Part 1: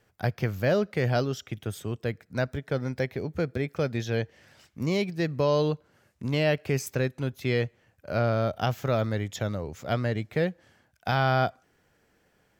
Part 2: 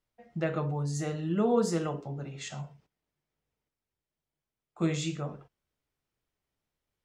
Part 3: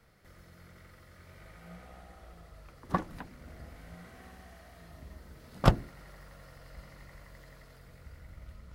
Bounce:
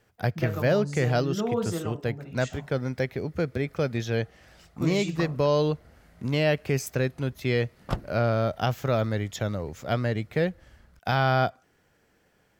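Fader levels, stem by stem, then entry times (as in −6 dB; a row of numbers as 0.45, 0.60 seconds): +1.0, −2.0, −7.0 decibels; 0.00, 0.00, 2.25 seconds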